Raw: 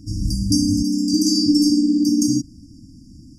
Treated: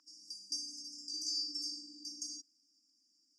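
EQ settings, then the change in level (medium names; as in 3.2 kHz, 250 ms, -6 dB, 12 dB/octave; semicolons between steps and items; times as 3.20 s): ladder high-pass 980 Hz, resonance 40%; tape spacing loss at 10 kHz 26 dB; treble shelf 4.6 kHz +8 dB; +3.0 dB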